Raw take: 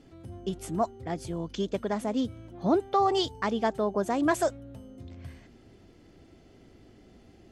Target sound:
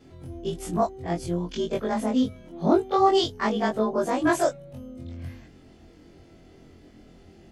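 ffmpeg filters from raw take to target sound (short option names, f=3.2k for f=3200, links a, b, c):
-af "afftfilt=real='re':imag='-im':win_size=2048:overlap=0.75,volume=8dB"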